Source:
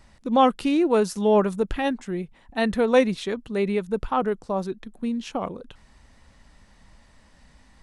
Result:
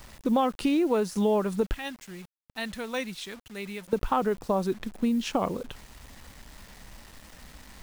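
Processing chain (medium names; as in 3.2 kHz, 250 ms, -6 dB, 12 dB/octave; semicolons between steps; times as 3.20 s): de-esser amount 70%; 1.74–3.93 s: amplifier tone stack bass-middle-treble 5-5-5; compression 8:1, threshold -26 dBFS, peak gain reduction 13 dB; bit crusher 9-bit; trim +4.5 dB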